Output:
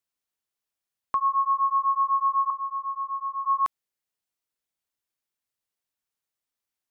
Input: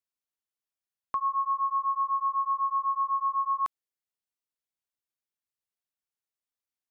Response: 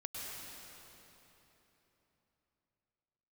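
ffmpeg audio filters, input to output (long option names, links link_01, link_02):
-filter_complex "[0:a]asettb=1/sr,asplit=3[link_01][link_02][link_03];[link_01]atrim=end=2.504[link_04];[link_02]atrim=start=2.5:end=3.45,asetpts=PTS-STARTPTS,afade=type=in:duration=0.004:curve=qsin,afade=type=out:start_time=0.946:duration=0.004:curve=qsin,lowpass=frequency=600:width_type=q:width=4.9[link_05];[link_03]atrim=start=3.446[link_06];[link_04][link_05]acrossfade=duration=0.004:curve1=hsin:curve2=qsin[link_07];[link_07][link_06]acrossfade=duration=0.004:curve1=qsin:curve2=hsin,volume=4.5dB"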